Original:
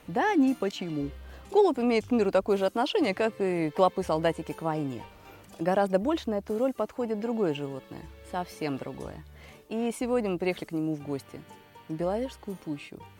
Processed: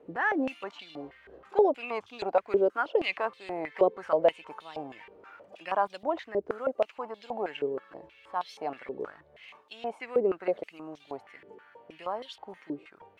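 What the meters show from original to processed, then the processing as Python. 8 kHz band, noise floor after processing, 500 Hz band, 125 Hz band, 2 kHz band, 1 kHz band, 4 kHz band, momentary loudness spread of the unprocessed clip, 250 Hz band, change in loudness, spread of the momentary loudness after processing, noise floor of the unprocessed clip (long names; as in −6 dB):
below −15 dB, −61 dBFS, −1.5 dB, −16.0 dB, +1.0 dB, −1.0 dB, −4.5 dB, 15 LU, −9.5 dB, −2.0 dB, 19 LU, −54 dBFS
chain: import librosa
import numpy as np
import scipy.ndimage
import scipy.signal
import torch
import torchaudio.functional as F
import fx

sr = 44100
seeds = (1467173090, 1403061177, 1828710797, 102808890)

y = fx.filter_held_bandpass(x, sr, hz=6.3, low_hz=420.0, high_hz=3600.0)
y = y * librosa.db_to_amplitude(8.5)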